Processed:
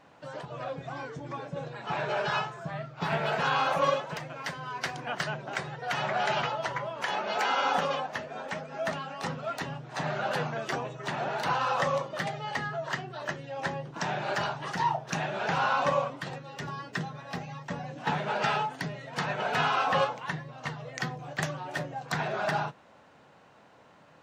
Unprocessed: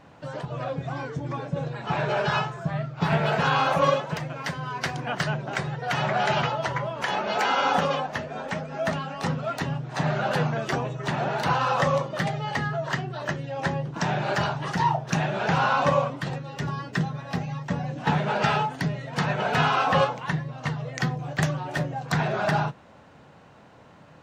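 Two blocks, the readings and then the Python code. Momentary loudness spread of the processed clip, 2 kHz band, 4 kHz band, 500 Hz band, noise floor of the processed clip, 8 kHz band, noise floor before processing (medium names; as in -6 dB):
12 LU, -3.5 dB, -3.5 dB, -5.0 dB, -57 dBFS, -3.5 dB, -51 dBFS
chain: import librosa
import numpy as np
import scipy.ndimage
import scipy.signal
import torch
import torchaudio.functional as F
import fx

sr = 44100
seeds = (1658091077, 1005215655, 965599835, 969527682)

y = fx.low_shelf(x, sr, hz=200.0, db=-11.0)
y = F.gain(torch.from_numpy(y), -3.5).numpy()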